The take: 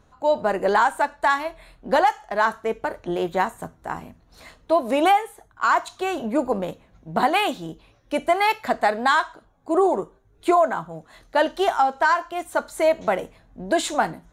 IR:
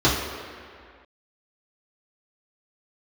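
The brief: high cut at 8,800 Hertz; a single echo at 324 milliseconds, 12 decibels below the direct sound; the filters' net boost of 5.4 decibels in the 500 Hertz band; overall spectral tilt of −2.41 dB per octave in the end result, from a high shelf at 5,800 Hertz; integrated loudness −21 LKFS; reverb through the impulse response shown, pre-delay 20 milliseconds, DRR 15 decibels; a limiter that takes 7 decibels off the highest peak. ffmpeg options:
-filter_complex "[0:a]lowpass=8800,equalizer=frequency=500:width_type=o:gain=7.5,highshelf=frequency=5800:gain=7,alimiter=limit=-10dB:level=0:latency=1,aecho=1:1:324:0.251,asplit=2[link_01][link_02];[1:a]atrim=start_sample=2205,adelay=20[link_03];[link_02][link_03]afir=irnorm=-1:irlink=0,volume=-35dB[link_04];[link_01][link_04]amix=inputs=2:normalize=0"

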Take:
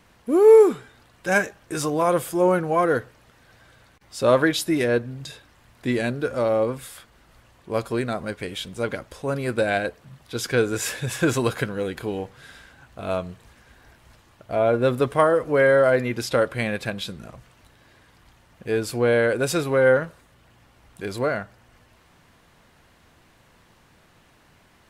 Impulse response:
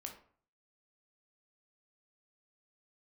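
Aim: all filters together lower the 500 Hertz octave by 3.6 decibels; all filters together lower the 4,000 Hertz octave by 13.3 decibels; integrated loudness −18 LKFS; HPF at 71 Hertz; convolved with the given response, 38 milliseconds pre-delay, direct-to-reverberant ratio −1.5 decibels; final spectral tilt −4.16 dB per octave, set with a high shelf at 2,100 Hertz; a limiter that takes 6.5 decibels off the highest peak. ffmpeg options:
-filter_complex "[0:a]highpass=71,equalizer=frequency=500:width_type=o:gain=-3.5,highshelf=frequency=2100:gain=-8.5,equalizer=frequency=4000:width_type=o:gain=-8.5,alimiter=limit=-14.5dB:level=0:latency=1,asplit=2[link_01][link_02];[1:a]atrim=start_sample=2205,adelay=38[link_03];[link_02][link_03]afir=irnorm=-1:irlink=0,volume=5dB[link_04];[link_01][link_04]amix=inputs=2:normalize=0,volume=5.5dB"

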